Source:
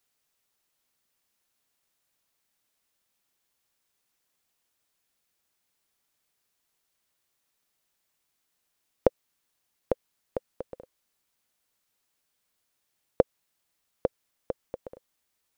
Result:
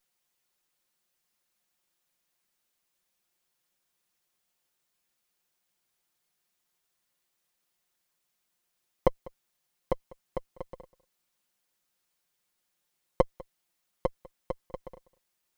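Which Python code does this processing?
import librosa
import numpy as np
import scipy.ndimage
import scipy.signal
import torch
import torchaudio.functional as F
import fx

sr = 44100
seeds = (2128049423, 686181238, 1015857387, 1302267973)

p1 = fx.lower_of_two(x, sr, delay_ms=5.6)
y = p1 + fx.echo_single(p1, sr, ms=198, db=-22.0, dry=0)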